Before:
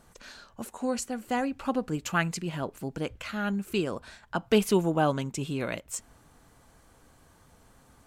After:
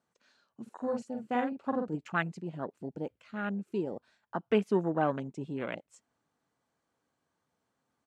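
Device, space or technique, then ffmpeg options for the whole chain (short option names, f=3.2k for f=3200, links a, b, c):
over-cleaned archive recording: -filter_complex "[0:a]highpass=160,lowpass=6.9k,afwtdn=0.02,asplit=3[a][b][c];[a]afade=t=out:st=0.66:d=0.02[d];[b]asplit=2[e][f];[f]adelay=45,volume=-4.5dB[g];[e][g]amix=inputs=2:normalize=0,afade=t=in:st=0.66:d=0.02,afade=t=out:st=1.95:d=0.02[h];[c]afade=t=in:st=1.95:d=0.02[i];[d][h][i]amix=inputs=3:normalize=0,volume=-3.5dB"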